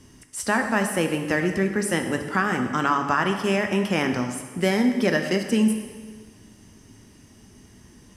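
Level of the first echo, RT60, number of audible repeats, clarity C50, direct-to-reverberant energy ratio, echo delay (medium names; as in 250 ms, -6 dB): no echo, 1.5 s, no echo, 7.0 dB, 5.0 dB, no echo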